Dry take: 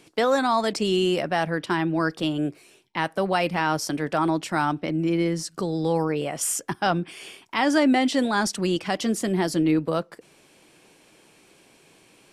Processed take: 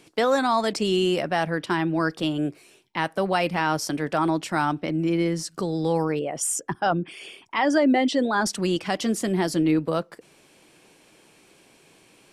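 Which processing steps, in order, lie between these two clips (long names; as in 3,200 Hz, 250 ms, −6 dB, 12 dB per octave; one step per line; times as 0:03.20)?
0:06.19–0:08.46: spectral envelope exaggerated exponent 1.5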